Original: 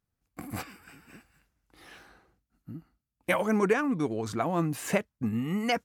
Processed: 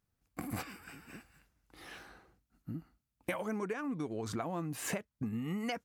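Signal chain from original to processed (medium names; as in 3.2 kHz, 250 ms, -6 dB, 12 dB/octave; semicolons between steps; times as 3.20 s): compression 8:1, threshold -35 dBFS, peak gain reduction 16 dB; trim +1 dB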